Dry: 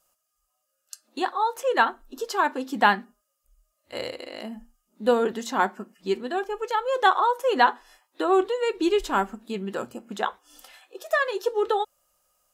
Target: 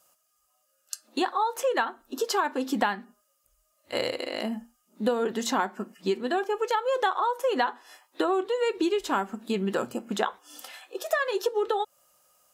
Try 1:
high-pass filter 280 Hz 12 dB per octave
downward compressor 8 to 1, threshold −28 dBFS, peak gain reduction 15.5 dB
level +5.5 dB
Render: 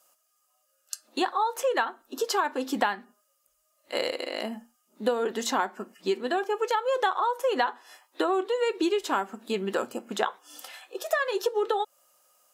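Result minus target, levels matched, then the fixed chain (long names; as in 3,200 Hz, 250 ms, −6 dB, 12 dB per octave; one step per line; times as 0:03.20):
125 Hz band −6.0 dB
high-pass filter 98 Hz 12 dB per octave
downward compressor 8 to 1, threshold −28 dBFS, peak gain reduction 15 dB
level +5.5 dB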